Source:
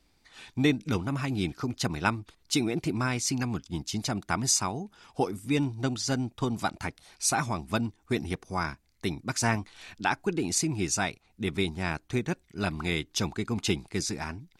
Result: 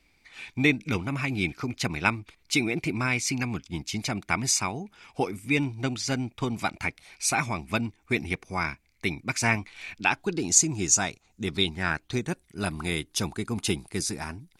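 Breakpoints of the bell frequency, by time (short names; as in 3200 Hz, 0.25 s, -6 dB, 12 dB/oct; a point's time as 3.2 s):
bell +13 dB 0.41 oct
10.03 s 2300 Hz
10.53 s 6800 Hz
11.44 s 6800 Hz
11.89 s 1300 Hz
12.29 s 10000 Hz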